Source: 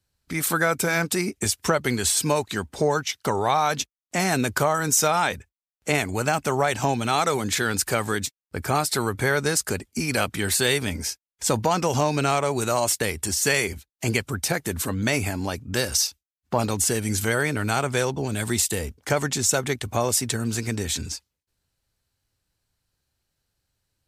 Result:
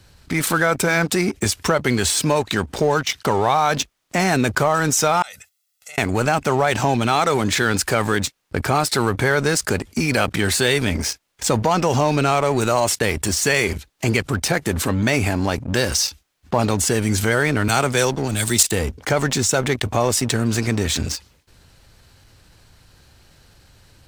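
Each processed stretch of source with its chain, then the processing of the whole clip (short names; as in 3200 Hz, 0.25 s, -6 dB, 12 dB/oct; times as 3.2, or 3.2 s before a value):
5.22–5.98 differentiator + comb 1.5 ms, depth 94% + compressor 16:1, threshold -44 dBFS
17.68–18.63 high shelf 3900 Hz +11 dB + three-band expander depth 100%
whole clip: high shelf 7600 Hz -11.5 dB; sample leveller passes 2; fast leveller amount 50%; gain -8 dB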